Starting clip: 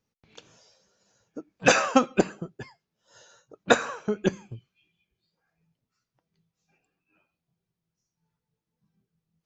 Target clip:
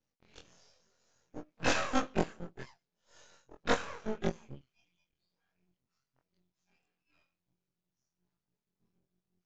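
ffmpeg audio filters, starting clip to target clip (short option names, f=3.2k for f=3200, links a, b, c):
-filter_complex "[0:a]afftfilt=real='re':imag='-im':win_size=2048:overlap=0.75,asplit=2[a][b];[b]acompressor=threshold=-36dB:ratio=6,volume=0dB[c];[a][c]amix=inputs=2:normalize=0,aeval=exprs='max(val(0),0)':c=same,aresample=16000,aresample=44100,volume=-3dB"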